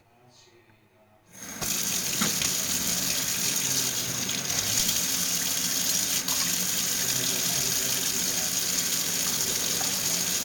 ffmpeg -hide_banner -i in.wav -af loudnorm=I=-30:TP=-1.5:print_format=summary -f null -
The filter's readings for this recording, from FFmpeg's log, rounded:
Input Integrated:    -24.1 LUFS
Input True Peak:      -6.4 dBTP
Input LRA:             1.5 LU
Input Threshold:     -34.6 LUFS